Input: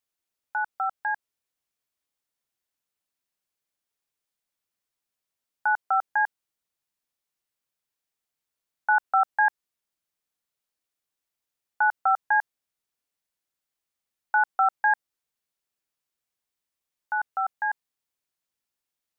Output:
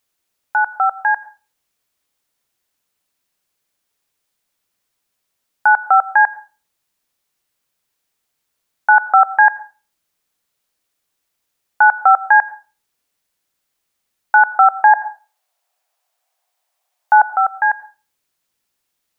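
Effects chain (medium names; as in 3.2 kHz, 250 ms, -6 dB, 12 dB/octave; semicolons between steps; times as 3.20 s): 14.73–17.28 s: resonant high-pass 710 Hz, resonance Q 4.9; reverberation RT60 0.35 s, pre-delay 78 ms, DRR 18.5 dB; loudness maximiser +13 dB; trim -1 dB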